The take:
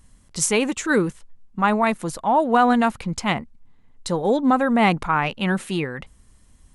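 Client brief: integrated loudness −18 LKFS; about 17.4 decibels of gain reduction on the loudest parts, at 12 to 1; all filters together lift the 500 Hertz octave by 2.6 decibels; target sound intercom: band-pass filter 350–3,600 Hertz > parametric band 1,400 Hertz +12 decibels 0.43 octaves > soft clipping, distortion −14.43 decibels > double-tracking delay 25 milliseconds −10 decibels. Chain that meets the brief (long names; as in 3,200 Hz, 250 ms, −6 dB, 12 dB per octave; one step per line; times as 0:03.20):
parametric band 500 Hz +4 dB
downward compressor 12 to 1, threshold −29 dBFS
band-pass filter 350–3,600 Hz
parametric band 1,400 Hz +12 dB 0.43 octaves
soft clipping −23.5 dBFS
double-tracking delay 25 ms −10 dB
level +16.5 dB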